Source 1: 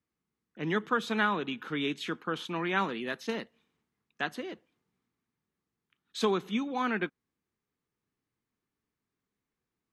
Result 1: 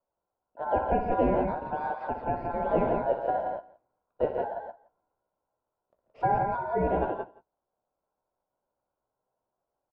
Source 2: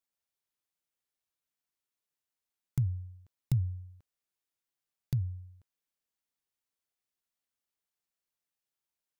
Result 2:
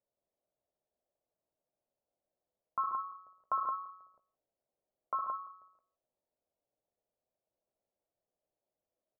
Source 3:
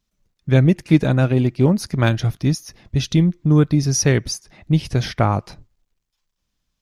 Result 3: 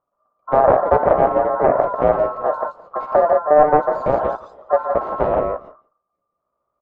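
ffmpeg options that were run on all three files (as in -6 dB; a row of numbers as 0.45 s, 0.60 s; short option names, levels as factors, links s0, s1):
-filter_complex "[0:a]asplit=2[s0][s1];[s1]aecho=0:1:61|115|134|140|141|171:0.355|0.178|0.211|0.15|0.211|0.562[s2];[s0][s2]amix=inputs=2:normalize=0,aeval=exprs='1*(cos(1*acos(clip(val(0)/1,-1,1)))-cos(1*PI/2))+0.447*(cos(7*acos(clip(val(0)/1,-1,1)))-cos(7*PI/2))':c=same,aeval=exprs='val(0)*sin(2*PI*1200*n/s)':c=same,lowpass=f=610:t=q:w=4.1,asplit=2[s3][s4];[s4]adelay=16,volume=0.316[s5];[s3][s5]amix=inputs=2:normalize=0,asplit=2[s6][s7];[s7]aecho=0:1:169:0.0794[s8];[s6][s8]amix=inputs=2:normalize=0,volume=0.891"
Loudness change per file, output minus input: +3.0 LU, -2.5 LU, +1.0 LU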